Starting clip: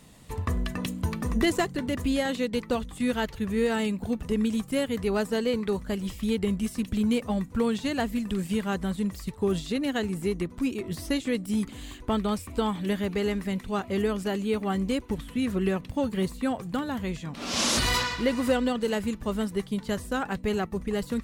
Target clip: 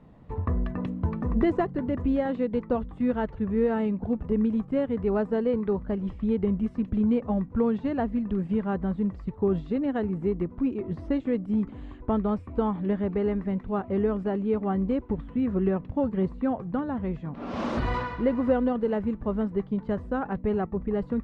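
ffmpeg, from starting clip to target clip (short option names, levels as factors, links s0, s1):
-af "lowpass=1100,volume=1.19"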